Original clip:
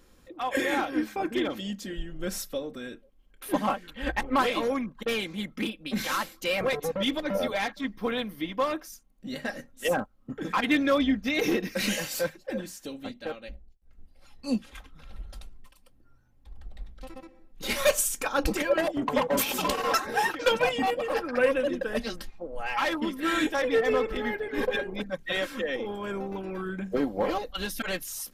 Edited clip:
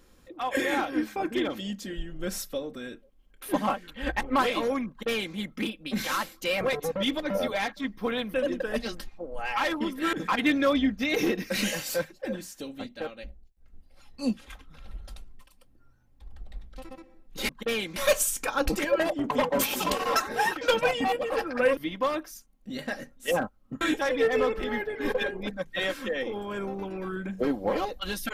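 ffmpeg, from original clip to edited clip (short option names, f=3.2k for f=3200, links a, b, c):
-filter_complex "[0:a]asplit=7[a][b][c][d][e][f][g];[a]atrim=end=8.342[h];[b]atrim=start=21.548:end=23.342[i];[c]atrim=start=10.378:end=17.742[j];[d]atrim=start=4.888:end=5.362[k];[e]atrim=start=17.738:end=21.552[l];[f]atrim=start=8.338:end=10.382[m];[g]atrim=start=23.338[n];[h][i]acrossfade=d=0.004:c1=hsin:c2=hsin[o];[o][j]acrossfade=d=0.004:c1=hsin:c2=hsin[p];[p][k]acrossfade=d=0.004:c1=hsin:c2=hsin[q];[q][l]acrossfade=d=0.004:c1=hsin:c2=hsin[r];[r][m]acrossfade=d=0.004:c1=hsin:c2=hsin[s];[s][n]acrossfade=d=0.004:c1=hsin:c2=hsin"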